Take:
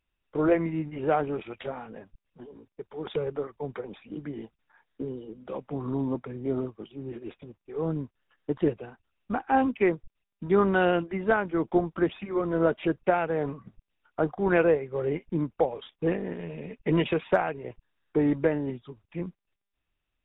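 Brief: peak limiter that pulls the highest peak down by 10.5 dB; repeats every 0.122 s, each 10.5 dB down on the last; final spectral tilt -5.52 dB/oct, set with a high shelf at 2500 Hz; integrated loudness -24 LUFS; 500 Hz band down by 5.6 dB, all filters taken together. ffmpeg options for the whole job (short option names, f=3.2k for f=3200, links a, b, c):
-af "equalizer=f=500:t=o:g=-7.5,highshelf=f=2.5k:g=6.5,alimiter=limit=-20.5dB:level=0:latency=1,aecho=1:1:122|244|366:0.299|0.0896|0.0269,volume=10dB"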